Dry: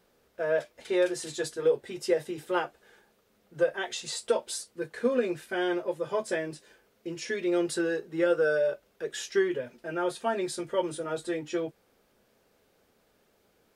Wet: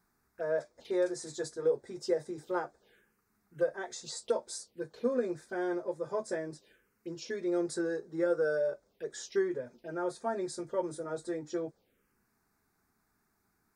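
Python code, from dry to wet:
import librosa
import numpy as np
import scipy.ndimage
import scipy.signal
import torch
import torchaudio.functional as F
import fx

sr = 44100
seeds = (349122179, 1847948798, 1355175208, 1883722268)

y = fx.env_phaser(x, sr, low_hz=510.0, high_hz=2900.0, full_db=-32.0)
y = y * librosa.db_to_amplitude(-4.0)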